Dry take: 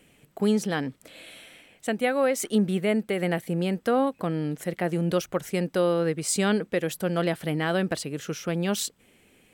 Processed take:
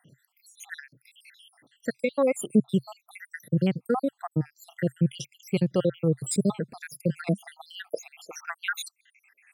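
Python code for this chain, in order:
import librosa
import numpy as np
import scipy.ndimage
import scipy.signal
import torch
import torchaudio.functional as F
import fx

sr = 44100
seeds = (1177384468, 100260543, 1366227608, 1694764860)

y = fx.spec_dropout(x, sr, seeds[0], share_pct=79)
y = fx.filter_sweep_highpass(y, sr, from_hz=130.0, to_hz=1700.0, start_s=7.07, end_s=8.79, q=4.7)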